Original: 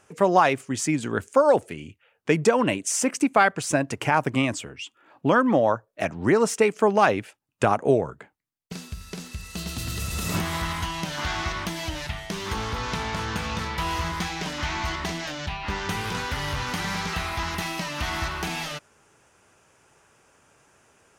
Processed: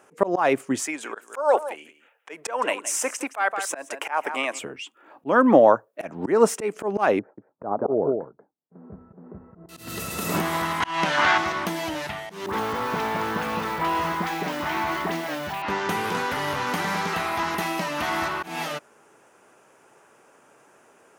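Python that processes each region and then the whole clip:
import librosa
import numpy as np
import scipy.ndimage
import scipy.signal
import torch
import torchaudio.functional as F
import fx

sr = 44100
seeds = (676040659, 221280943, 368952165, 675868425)

y = fx.chain(x, sr, fx.highpass(hz=720.0, slope=12),
    fx.notch(hz=4500.0, q=14.0),
    fx.echo_single(ms=168, db=-15.5), at=(0.84, 4.59))
y = fx.chain(y, sr, fx.gaussian_blur(sigma=8.4),
    fx.echo_single(ms=185, db=-9.5), at=(7.19, 9.69))
y = fx.chain(y, sr, fx.lowpass(hz=8600.0, slope=12),
    fx.peak_eq(hz=1800.0, db=9.0, octaves=2.8), at=(10.8, 11.38))
y = fx.chain(y, sr, fx.lowpass(hz=4000.0, slope=6),
    fx.dispersion(late='highs', ms=70.0, hz=1300.0),
    fx.sample_gate(floor_db=-39.5), at=(12.46, 15.62))
y = scipy.signal.sosfilt(scipy.signal.butter(2, 260.0, 'highpass', fs=sr, output='sos'), y)
y = fx.peak_eq(y, sr, hz=4900.0, db=-10.0, octaves=2.7)
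y = fx.auto_swell(y, sr, attack_ms=185.0)
y = y * librosa.db_to_amplitude(7.5)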